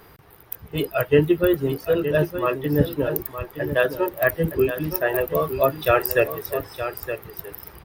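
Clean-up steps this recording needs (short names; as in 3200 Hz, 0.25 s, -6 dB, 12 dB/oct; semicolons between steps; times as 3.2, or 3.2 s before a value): inverse comb 0.918 s -10 dB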